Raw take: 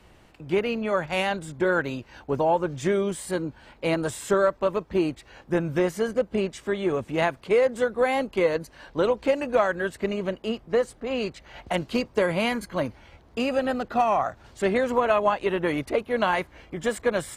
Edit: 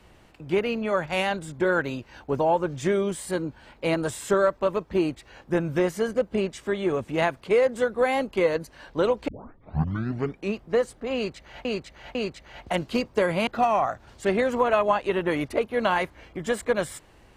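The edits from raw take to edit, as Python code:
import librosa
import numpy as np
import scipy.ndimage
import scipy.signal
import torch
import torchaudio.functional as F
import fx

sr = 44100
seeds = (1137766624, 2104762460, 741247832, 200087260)

y = fx.edit(x, sr, fx.tape_start(start_s=9.28, length_s=1.33),
    fx.repeat(start_s=11.15, length_s=0.5, count=3),
    fx.cut(start_s=12.47, length_s=1.37), tone=tone)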